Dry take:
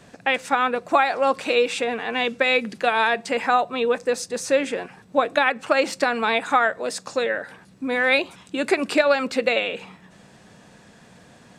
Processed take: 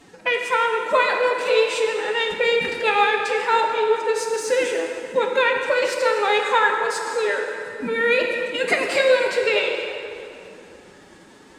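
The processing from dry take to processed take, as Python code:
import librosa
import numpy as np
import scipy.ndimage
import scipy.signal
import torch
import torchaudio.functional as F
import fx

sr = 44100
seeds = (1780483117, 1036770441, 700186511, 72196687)

y = fx.pitch_keep_formants(x, sr, semitones=10.5)
y = fx.rev_plate(y, sr, seeds[0], rt60_s=2.7, hf_ratio=0.75, predelay_ms=0, drr_db=1.5)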